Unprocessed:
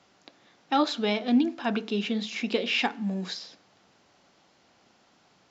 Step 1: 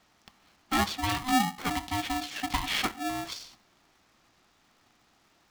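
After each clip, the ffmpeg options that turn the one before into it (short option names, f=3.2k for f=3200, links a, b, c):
-af "aeval=exprs='val(0)*sgn(sin(2*PI*510*n/s))':c=same,volume=-3dB"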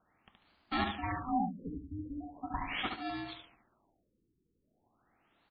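-af "aecho=1:1:72|144|216|288:0.562|0.169|0.0506|0.0152,afftfilt=real='re*lt(b*sr/1024,460*pow(5000/460,0.5+0.5*sin(2*PI*0.4*pts/sr)))':imag='im*lt(b*sr/1024,460*pow(5000/460,0.5+0.5*sin(2*PI*0.4*pts/sr)))':win_size=1024:overlap=0.75,volume=-7dB"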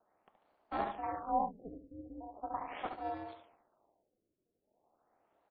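-af "bandpass=f=610:t=q:w=2.1:csg=0,tremolo=f=230:d=0.75,volume=8dB"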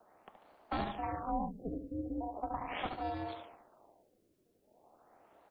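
-filter_complex "[0:a]acrossover=split=210|3000[a][b][c];[b]acompressor=threshold=-48dB:ratio=5[d];[a][d][c]amix=inputs=3:normalize=0,volume=11dB"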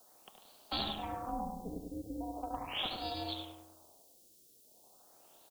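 -filter_complex "[0:a]aexciter=amount=10.1:drive=7.5:freq=3.1k,asplit=2[a][b];[b]adelay=100,lowpass=f=1.2k:p=1,volume=-4dB,asplit=2[c][d];[d]adelay=100,lowpass=f=1.2k:p=1,volume=0.55,asplit=2[e][f];[f]adelay=100,lowpass=f=1.2k:p=1,volume=0.55,asplit=2[g][h];[h]adelay=100,lowpass=f=1.2k:p=1,volume=0.55,asplit=2[i][j];[j]adelay=100,lowpass=f=1.2k:p=1,volume=0.55,asplit=2[k][l];[l]adelay=100,lowpass=f=1.2k:p=1,volume=0.55,asplit=2[m][n];[n]adelay=100,lowpass=f=1.2k:p=1,volume=0.55[o];[c][e][g][i][k][m][o]amix=inputs=7:normalize=0[p];[a][p]amix=inputs=2:normalize=0,volume=-4dB"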